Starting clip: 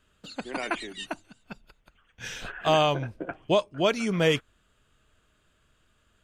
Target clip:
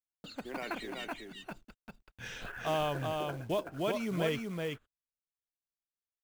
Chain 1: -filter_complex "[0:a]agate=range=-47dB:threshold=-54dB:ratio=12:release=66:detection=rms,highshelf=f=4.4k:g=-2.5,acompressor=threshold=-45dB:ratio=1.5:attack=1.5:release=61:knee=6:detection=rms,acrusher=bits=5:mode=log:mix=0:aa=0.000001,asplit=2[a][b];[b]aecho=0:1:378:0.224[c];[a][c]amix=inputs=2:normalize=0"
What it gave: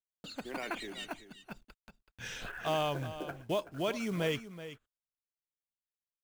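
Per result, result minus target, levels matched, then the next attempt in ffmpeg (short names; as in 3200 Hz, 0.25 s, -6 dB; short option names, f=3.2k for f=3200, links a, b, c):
echo-to-direct -9 dB; 8000 Hz band +3.0 dB
-filter_complex "[0:a]agate=range=-47dB:threshold=-54dB:ratio=12:release=66:detection=rms,highshelf=f=4.4k:g=-2.5,acompressor=threshold=-45dB:ratio=1.5:attack=1.5:release=61:knee=6:detection=rms,acrusher=bits=5:mode=log:mix=0:aa=0.000001,asplit=2[a][b];[b]aecho=0:1:378:0.631[c];[a][c]amix=inputs=2:normalize=0"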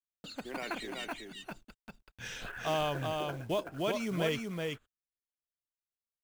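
8000 Hz band +3.0 dB
-filter_complex "[0:a]agate=range=-47dB:threshold=-54dB:ratio=12:release=66:detection=rms,highshelf=f=4.4k:g=-10.5,acompressor=threshold=-45dB:ratio=1.5:attack=1.5:release=61:knee=6:detection=rms,acrusher=bits=5:mode=log:mix=0:aa=0.000001,asplit=2[a][b];[b]aecho=0:1:378:0.631[c];[a][c]amix=inputs=2:normalize=0"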